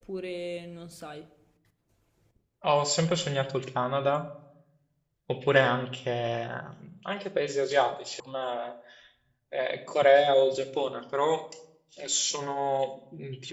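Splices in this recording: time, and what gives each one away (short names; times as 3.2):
8.2 sound cut off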